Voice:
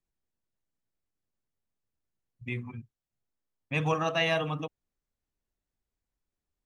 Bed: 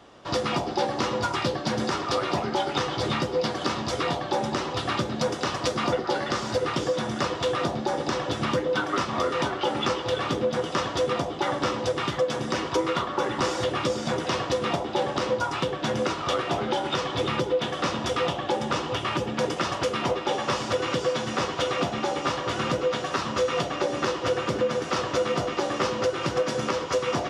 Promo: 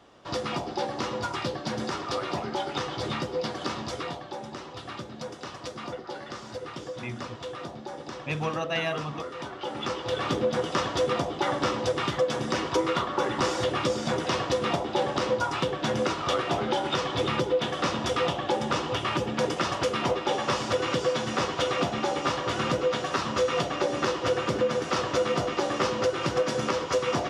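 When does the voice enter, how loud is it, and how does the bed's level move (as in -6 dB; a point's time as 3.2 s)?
4.55 s, -2.0 dB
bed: 3.83 s -4.5 dB
4.35 s -11.5 dB
9.38 s -11.5 dB
10.31 s -0.5 dB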